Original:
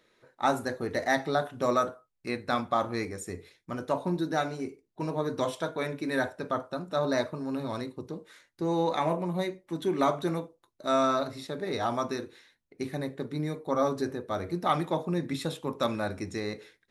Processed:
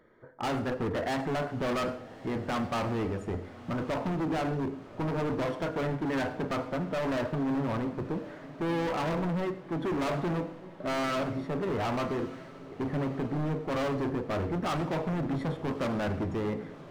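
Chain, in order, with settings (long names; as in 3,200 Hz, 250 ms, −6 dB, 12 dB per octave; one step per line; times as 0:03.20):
low-shelf EQ 300 Hz +6 dB
in parallel at −2.5 dB: brickwall limiter −21 dBFS, peak gain reduction 8.5 dB
on the sum: Savitzky-Golay smoothing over 41 samples
gain into a clipping stage and back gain 28.5 dB
feedback delay with all-pass diffusion 1,202 ms, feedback 50%, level −16 dB
on a send at −14.5 dB: convolution reverb RT60 0.55 s, pre-delay 70 ms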